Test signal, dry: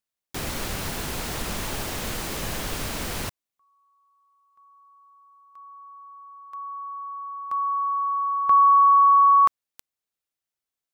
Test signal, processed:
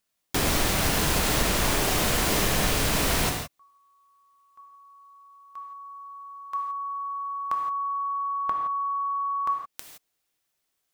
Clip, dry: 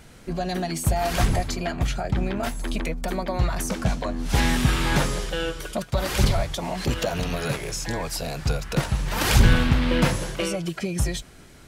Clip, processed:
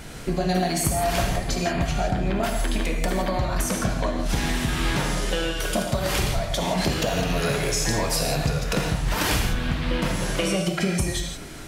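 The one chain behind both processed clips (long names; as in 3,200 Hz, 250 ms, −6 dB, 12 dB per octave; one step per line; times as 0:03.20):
downward compressor 12 to 1, threshold −30 dBFS
reverb whose tail is shaped and stops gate 190 ms flat, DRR 1.5 dB
level +8.5 dB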